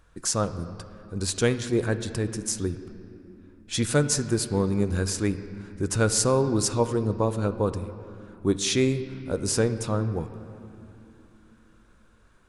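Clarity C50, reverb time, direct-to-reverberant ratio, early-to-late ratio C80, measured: 11.5 dB, 2.9 s, 10.0 dB, 12.0 dB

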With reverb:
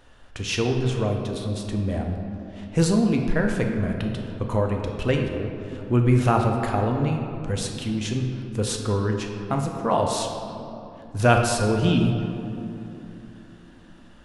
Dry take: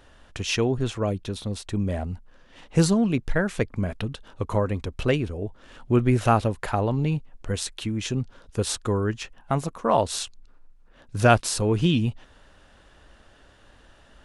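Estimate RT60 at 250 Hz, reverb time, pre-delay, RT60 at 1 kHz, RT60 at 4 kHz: 4.3 s, 2.9 s, 4 ms, 2.7 s, 1.5 s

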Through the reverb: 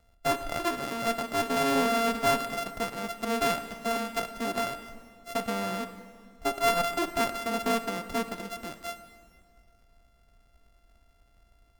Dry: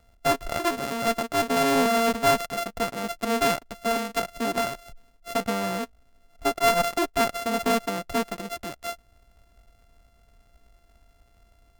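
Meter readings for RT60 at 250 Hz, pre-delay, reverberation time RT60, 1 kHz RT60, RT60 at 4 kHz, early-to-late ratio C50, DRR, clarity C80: 2.0 s, 27 ms, 1.9 s, 1.9 s, 1.7 s, 11.0 dB, 10.0 dB, 12.0 dB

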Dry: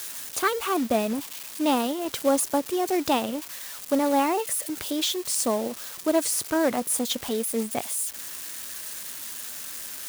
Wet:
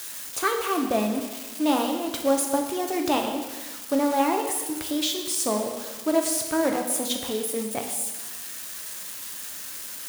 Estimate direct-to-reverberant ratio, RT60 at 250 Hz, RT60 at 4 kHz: 3.0 dB, 1.3 s, 1.2 s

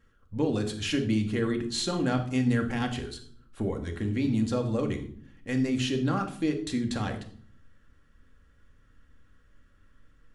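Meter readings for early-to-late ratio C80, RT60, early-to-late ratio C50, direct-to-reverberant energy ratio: 14.5 dB, 0.55 s, 10.5 dB, 3.5 dB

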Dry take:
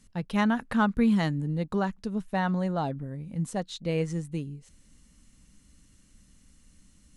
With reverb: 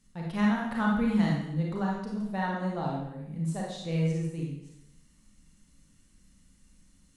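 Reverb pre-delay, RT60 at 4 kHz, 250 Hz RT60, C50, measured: 26 ms, 0.75 s, 0.80 s, 0.5 dB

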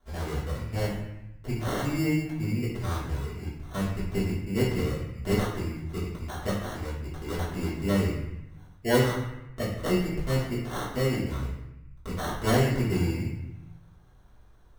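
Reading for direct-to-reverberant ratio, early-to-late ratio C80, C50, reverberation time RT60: −9.5 dB, 5.0 dB, 2.5 dB, 0.85 s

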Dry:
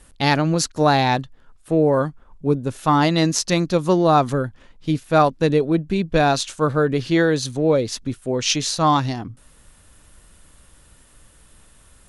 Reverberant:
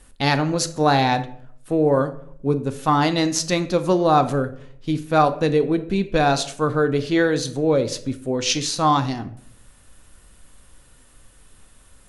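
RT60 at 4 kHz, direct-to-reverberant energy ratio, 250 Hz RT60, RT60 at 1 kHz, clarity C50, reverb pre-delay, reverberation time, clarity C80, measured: 0.40 s, 9.0 dB, 0.80 s, 0.50 s, 14.0 dB, 3 ms, 0.60 s, 17.0 dB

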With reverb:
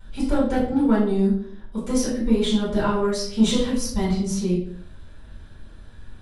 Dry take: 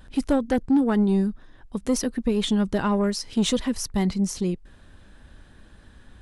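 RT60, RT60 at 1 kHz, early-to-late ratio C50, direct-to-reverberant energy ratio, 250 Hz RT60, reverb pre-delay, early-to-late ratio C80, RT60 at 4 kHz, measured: 0.60 s, 0.55 s, 4.0 dB, −9.0 dB, 0.65 s, 3 ms, 8.0 dB, 0.45 s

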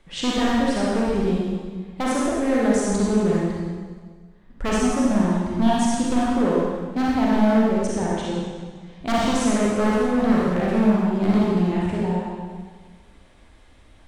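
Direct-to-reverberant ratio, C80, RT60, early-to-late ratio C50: −6.0 dB, −0.5 dB, 1.6 s, −4.0 dB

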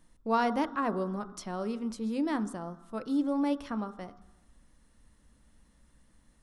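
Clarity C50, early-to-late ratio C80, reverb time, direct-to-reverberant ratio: 15.5 dB, 17.0 dB, 1.0 s, 11.5 dB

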